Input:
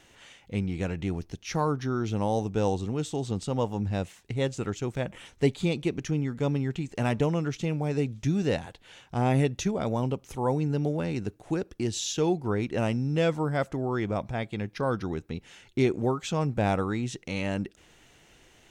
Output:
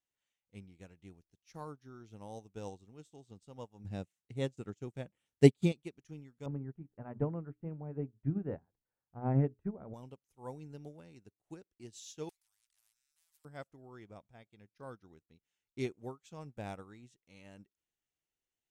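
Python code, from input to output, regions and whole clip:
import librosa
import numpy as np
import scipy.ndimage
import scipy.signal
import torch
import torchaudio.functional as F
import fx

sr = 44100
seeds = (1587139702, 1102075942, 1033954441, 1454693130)

y = fx.chain(x, sr, fx.highpass(hz=170.0, slope=6),
    fx.low_shelf(hz=360.0, db=11.5),
    fx.notch(hz=1000.0, q=22.0), at=(3.84, 5.72))
y = fx.chain(y, sr, fx.lowpass(hz=1500.0, slope=24),
    fx.low_shelf(hz=350.0, db=5.5),
    fx.hum_notches(base_hz=60, count=7), at=(6.46, 9.94))
y = fx.chain(y, sr, fx.cheby2_bandstop(low_hz=130.0, high_hz=550.0, order=4, stop_db=70),
    fx.spectral_comp(ratio=10.0), at=(12.29, 13.45))
y = fx.high_shelf(y, sr, hz=6600.0, db=11.5)
y = fx.upward_expand(y, sr, threshold_db=-39.0, expansion=2.5)
y = y * 10.0 ** (-1.5 / 20.0)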